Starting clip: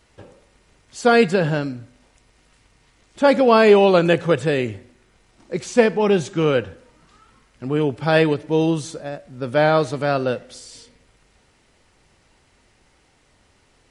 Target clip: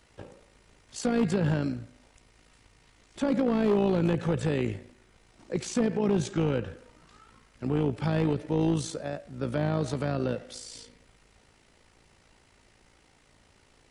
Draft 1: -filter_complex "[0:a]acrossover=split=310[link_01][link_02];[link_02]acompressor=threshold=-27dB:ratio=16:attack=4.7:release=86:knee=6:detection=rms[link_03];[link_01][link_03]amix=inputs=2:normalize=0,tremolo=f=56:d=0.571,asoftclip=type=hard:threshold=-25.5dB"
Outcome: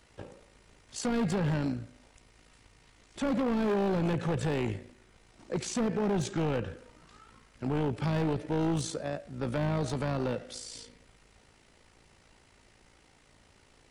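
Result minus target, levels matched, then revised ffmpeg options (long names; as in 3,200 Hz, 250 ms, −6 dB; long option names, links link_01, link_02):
hard clipping: distortion +8 dB
-filter_complex "[0:a]acrossover=split=310[link_01][link_02];[link_02]acompressor=threshold=-27dB:ratio=16:attack=4.7:release=86:knee=6:detection=rms[link_03];[link_01][link_03]amix=inputs=2:normalize=0,tremolo=f=56:d=0.571,asoftclip=type=hard:threshold=-19dB"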